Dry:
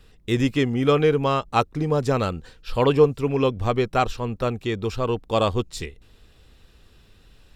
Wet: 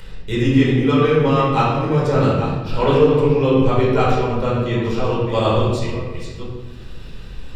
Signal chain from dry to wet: reverse delay 0.5 s, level -10 dB; upward compressor, threshold -30 dBFS; reverb RT60 1.1 s, pre-delay 10 ms, DRR -7.5 dB; gain -6.5 dB

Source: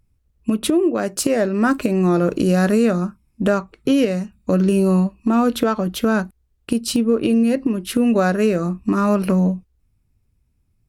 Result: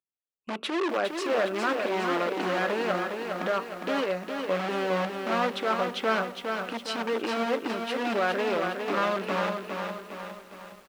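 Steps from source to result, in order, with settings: in parallel at -6.5 dB: wrapped overs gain 14.5 dB; on the sum: limiter -10.5 dBFS, peak gain reduction 6 dB; BPF 500–3000 Hz; gate with hold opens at -45 dBFS; on a send: feedback echo 0.511 s, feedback 53%, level -19 dB; on the sum: lo-fi delay 0.409 s, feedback 55%, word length 8-bit, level -5 dB; gain -4.5 dB

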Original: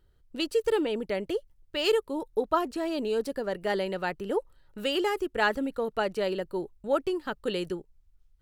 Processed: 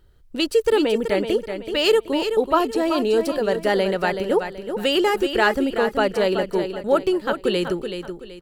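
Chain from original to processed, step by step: in parallel at -2.5 dB: limiter -20.5 dBFS, peak gain reduction 9 dB; on the sum: feedback echo 0.378 s, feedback 33%, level -8 dB; gain +4 dB

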